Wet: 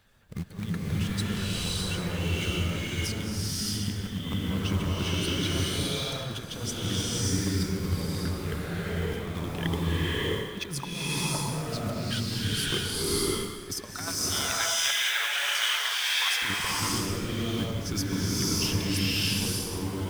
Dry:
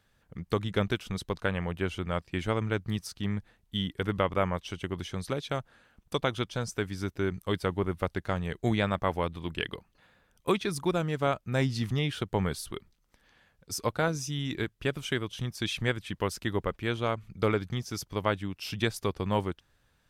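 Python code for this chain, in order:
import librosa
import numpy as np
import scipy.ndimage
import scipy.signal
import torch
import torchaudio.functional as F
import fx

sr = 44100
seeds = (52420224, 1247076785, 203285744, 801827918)

y = fx.spec_quant(x, sr, step_db=15)
y = fx.quant_float(y, sr, bits=2)
y = fx.steep_highpass(y, sr, hz=770.0, slope=36, at=(13.9, 16.42))
y = fx.over_compress(y, sr, threshold_db=-36.0, ratio=-0.5)
y = fx.rev_bloom(y, sr, seeds[0], attack_ms=610, drr_db=-8.5)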